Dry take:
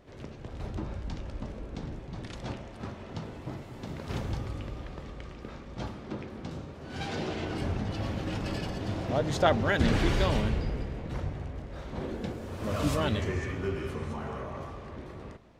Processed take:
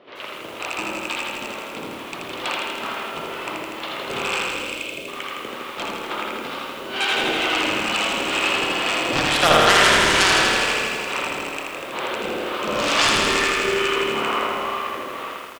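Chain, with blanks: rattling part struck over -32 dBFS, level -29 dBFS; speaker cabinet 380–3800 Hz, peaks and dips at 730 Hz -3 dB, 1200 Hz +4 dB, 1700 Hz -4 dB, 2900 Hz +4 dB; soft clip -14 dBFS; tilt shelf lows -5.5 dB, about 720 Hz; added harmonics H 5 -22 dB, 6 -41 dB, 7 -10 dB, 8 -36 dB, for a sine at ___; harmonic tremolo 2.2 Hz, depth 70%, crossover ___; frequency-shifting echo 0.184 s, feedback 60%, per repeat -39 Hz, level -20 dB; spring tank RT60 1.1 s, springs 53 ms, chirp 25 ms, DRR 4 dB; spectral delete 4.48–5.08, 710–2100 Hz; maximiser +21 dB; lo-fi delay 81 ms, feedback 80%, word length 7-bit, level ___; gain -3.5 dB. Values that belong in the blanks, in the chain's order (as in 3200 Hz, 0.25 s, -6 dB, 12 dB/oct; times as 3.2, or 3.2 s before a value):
-11.5 dBFS, 640 Hz, -3 dB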